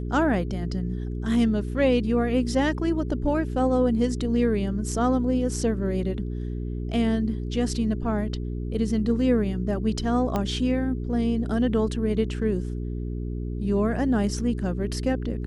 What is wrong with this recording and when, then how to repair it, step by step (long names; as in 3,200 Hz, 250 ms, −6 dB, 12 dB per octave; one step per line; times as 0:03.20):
mains hum 60 Hz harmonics 7 −30 dBFS
0:10.36: click −13 dBFS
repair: click removal
hum removal 60 Hz, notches 7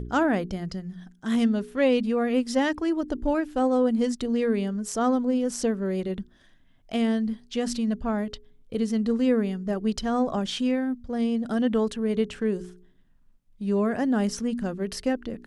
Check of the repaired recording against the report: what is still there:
none of them is left